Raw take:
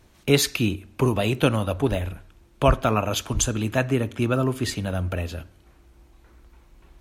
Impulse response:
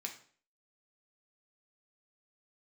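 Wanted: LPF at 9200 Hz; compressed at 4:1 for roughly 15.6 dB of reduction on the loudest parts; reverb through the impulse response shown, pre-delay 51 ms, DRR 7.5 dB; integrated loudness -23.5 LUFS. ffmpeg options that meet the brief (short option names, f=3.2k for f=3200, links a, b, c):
-filter_complex "[0:a]lowpass=9.2k,acompressor=threshold=-32dB:ratio=4,asplit=2[a][b];[1:a]atrim=start_sample=2205,adelay=51[c];[b][c]afir=irnorm=-1:irlink=0,volume=-6.5dB[d];[a][d]amix=inputs=2:normalize=0,volume=11.5dB"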